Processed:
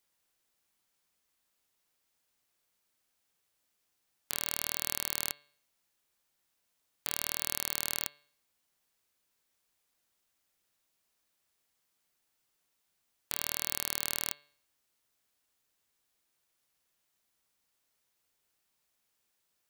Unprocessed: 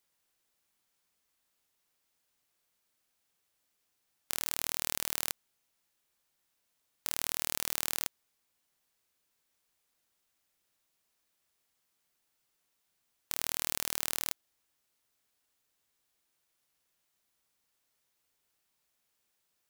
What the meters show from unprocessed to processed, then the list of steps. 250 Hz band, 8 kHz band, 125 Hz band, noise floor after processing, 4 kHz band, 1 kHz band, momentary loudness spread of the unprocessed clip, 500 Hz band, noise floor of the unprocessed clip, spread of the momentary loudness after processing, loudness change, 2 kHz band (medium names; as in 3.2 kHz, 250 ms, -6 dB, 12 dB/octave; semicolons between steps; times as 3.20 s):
0.0 dB, 0.0 dB, 0.0 dB, -79 dBFS, 0.0 dB, 0.0 dB, 6 LU, -0.5 dB, -79 dBFS, 6 LU, 0.0 dB, 0.0 dB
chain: de-hum 145.6 Hz, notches 32